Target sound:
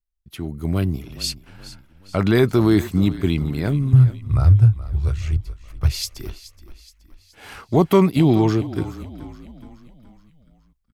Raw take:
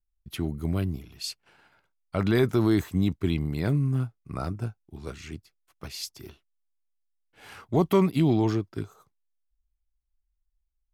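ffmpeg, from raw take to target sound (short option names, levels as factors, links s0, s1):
-filter_complex "[0:a]asettb=1/sr,asplit=3[s0][s1][s2];[s0]atrim=end=3.934[s3];[s1]atrim=start=3.93:end=6.17,asetpts=PTS-STARTPTS,afade=t=in:d=0.004:c=qsin,afade=t=out:st=2.236:d=0.004:c=qsin,lowshelf=f=150:t=q:w=3:g=13.5[s4];[s2]atrim=start=6.166[s5];[s3][s4]acrossfade=d=0.004:c1=hsin:c2=qsin[s6];[s6][s5]acrossfade=d=0.004:c1=qsin:c2=hsin,dynaudnorm=f=270:g=5:m=4.47,asplit=6[s7][s8][s9][s10][s11][s12];[s8]adelay=423,afreqshift=-32,volume=0.158[s13];[s9]adelay=846,afreqshift=-64,volume=0.0813[s14];[s10]adelay=1269,afreqshift=-96,volume=0.0412[s15];[s11]adelay=1692,afreqshift=-128,volume=0.0211[s16];[s12]adelay=2115,afreqshift=-160,volume=0.0107[s17];[s7][s13][s14][s15][s16][s17]amix=inputs=6:normalize=0,volume=0.708"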